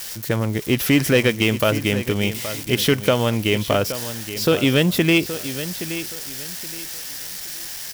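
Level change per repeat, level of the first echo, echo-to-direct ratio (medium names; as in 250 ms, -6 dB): -11.5 dB, -12.0 dB, -11.5 dB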